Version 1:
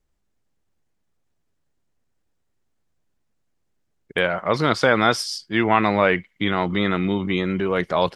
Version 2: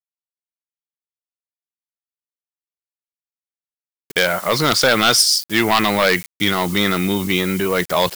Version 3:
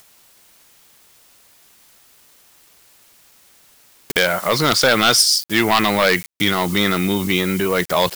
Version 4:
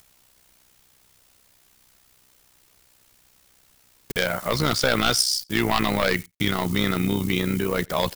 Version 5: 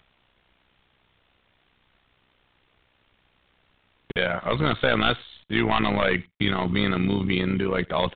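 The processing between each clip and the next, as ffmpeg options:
-af "aeval=exprs='0.841*sin(PI/2*2.24*val(0)/0.841)':c=same,acrusher=bits=5:mix=0:aa=0.000001,crystalizer=i=4:c=0,volume=-8dB"
-af "acompressor=mode=upward:threshold=-17dB:ratio=2.5"
-filter_complex "[0:a]lowshelf=f=140:g=12,tremolo=f=63:d=0.667,asplit=2[a][b];[b]adelay=87.46,volume=-29dB,highshelf=f=4k:g=-1.97[c];[a][c]amix=inputs=2:normalize=0,volume=-4.5dB"
-af "aresample=8000,aresample=44100"

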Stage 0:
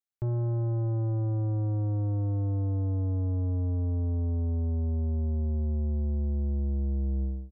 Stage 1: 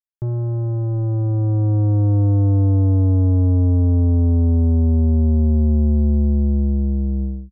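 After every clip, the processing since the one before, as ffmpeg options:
-af "anlmdn=0.1,equalizer=f=190:w=1.2:g=6.5,dynaudnorm=f=440:g=7:m=8dB,volume=3.5dB"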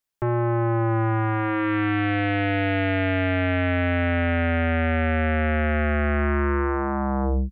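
-af "aeval=exprs='0.299*sin(PI/2*6.31*val(0)/0.299)':c=same,volume=-9dB"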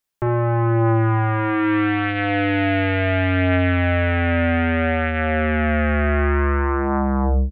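-filter_complex "[0:a]asplit=2[a][b];[b]adelay=44,volume=-9dB[c];[a][c]amix=inputs=2:normalize=0,volume=3dB"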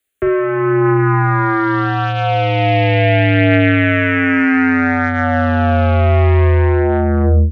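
-filter_complex "[0:a]afreqshift=14,acontrast=22,asplit=2[a][b];[b]afreqshift=-0.28[c];[a][c]amix=inputs=2:normalize=1,volume=4.5dB"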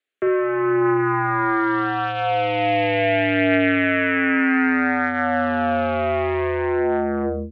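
-af "highpass=230,lowpass=3.9k,volume=-4dB"

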